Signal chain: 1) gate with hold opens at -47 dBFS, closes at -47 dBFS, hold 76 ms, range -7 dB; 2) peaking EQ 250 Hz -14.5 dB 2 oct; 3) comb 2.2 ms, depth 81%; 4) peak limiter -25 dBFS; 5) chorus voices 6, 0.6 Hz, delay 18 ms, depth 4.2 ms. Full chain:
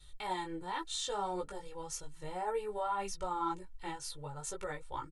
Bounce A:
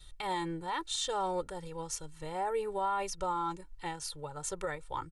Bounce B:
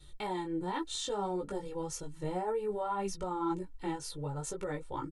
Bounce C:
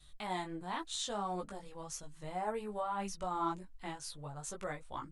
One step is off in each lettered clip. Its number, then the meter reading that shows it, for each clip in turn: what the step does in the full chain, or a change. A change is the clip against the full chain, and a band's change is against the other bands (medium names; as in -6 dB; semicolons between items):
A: 5, loudness change +3.0 LU; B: 2, 250 Hz band +8.5 dB; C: 3, 125 Hz band +3.5 dB